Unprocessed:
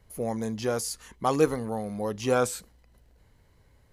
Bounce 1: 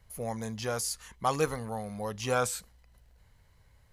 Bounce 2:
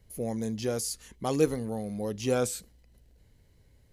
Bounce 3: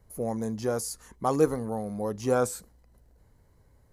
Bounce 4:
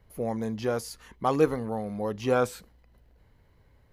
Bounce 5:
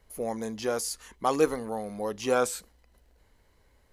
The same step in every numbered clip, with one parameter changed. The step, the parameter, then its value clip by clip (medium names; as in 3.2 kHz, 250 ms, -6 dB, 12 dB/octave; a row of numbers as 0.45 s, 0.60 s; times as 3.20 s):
peaking EQ, frequency: 320 Hz, 1.1 kHz, 2.9 kHz, 8.2 kHz, 120 Hz